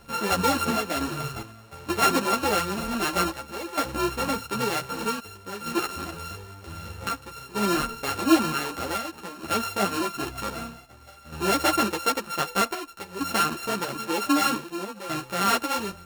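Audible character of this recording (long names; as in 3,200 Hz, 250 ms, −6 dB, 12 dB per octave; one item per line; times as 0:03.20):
a buzz of ramps at a fixed pitch in blocks of 32 samples
chopped level 0.53 Hz, depth 65%, duty 75%
a shimmering, thickened sound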